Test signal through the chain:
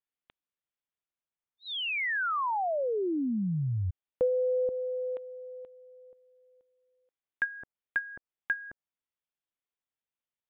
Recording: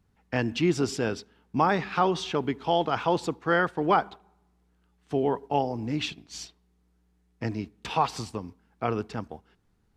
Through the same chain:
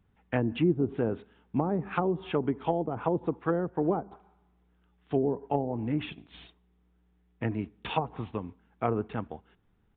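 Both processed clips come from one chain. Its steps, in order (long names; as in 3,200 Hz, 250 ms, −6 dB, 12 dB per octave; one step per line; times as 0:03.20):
treble cut that deepens with the level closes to 440 Hz, closed at −21 dBFS
downsampling to 8,000 Hz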